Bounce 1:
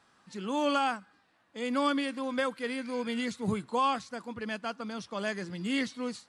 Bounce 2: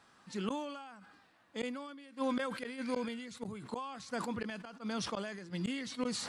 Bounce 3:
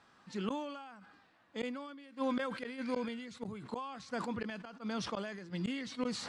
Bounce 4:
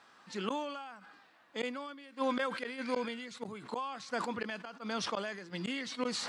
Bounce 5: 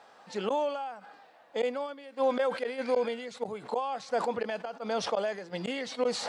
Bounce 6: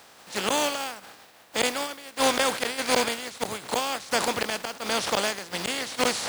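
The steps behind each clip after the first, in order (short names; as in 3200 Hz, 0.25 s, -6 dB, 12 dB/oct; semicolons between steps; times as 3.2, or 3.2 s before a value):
flipped gate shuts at -26 dBFS, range -28 dB; sustainer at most 42 dB/s; gain +1 dB
air absorption 62 m
HPF 440 Hz 6 dB/oct; gain +5 dB
band shelf 610 Hz +10.5 dB 1.2 oct; in parallel at +2.5 dB: limiter -24 dBFS, peak gain reduction 10.5 dB; on the sum: gain -6 dB
spectral contrast lowered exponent 0.41; gain +4.5 dB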